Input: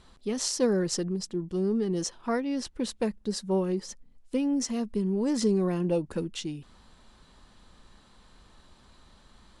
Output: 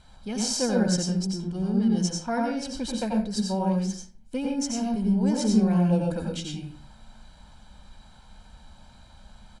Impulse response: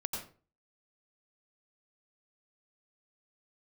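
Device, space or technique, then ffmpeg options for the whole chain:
microphone above a desk: -filter_complex "[0:a]aecho=1:1:1.3:0.65[s0];[1:a]atrim=start_sample=2205[s1];[s0][s1]afir=irnorm=-1:irlink=0"

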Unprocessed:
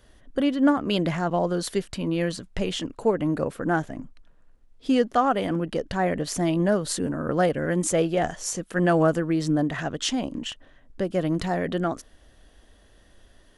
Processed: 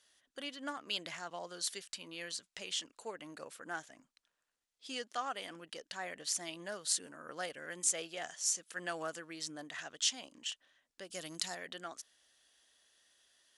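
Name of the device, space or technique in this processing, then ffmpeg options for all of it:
piezo pickup straight into a mixer: -filter_complex "[0:a]lowpass=7400,aderivative,asettb=1/sr,asplit=3[s0][s1][s2];[s0]atrim=end=11.104[s3];[s1]atrim=start=11.1:end=11.55,asetpts=PTS-STARTPTS,afade=t=in:d=0.004:c=qsin,afade=t=out:st=0.446:d=0.004:c=qsin,bass=f=250:g=5,treble=f=4000:g=11[s4];[s2]atrim=start=11.546[s5];[s3][s4]acrossfade=d=0.004:c1=hsin:c2=qsin[s6];[s6][s5]acrossfade=d=0.004:c1=qsin:c2=hsin,volume=1.12"

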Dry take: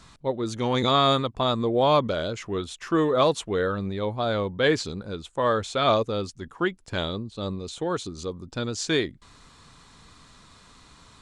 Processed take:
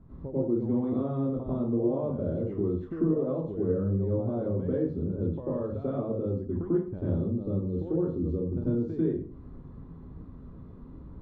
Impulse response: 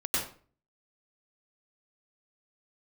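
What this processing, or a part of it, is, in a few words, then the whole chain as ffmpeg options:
television next door: -filter_complex "[0:a]acompressor=threshold=0.0178:ratio=4,lowpass=360[s0];[1:a]atrim=start_sample=2205[s1];[s0][s1]afir=irnorm=-1:irlink=0,volume=1.41"

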